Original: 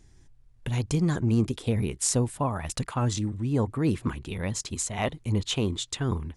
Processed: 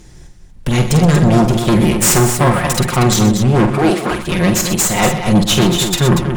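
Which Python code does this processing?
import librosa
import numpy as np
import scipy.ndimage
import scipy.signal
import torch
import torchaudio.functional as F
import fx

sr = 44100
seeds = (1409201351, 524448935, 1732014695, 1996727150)

y = fx.lower_of_two(x, sr, delay_ms=5.6)
y = fx.highpass(y, sr, hz=340.0, slope=12, at=(3.67, 4.11))
y = fx.fold_sine(y, sr, drive_db=14, ceiling_db=-8.0)
y = fx.echo_multitap(y, sr, ms=(47, 123, 237), db=(-7.5, -12.0, -8.0))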